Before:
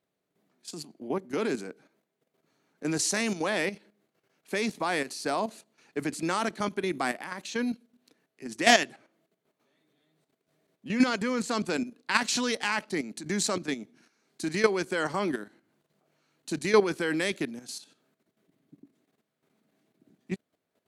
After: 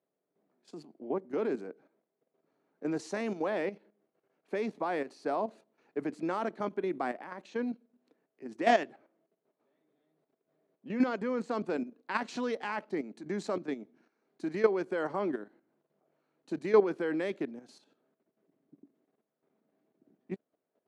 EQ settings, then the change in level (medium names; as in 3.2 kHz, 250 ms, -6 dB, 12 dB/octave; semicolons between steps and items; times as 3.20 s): band-pass filter 500 Hz, Q 0.75; -1.0 dB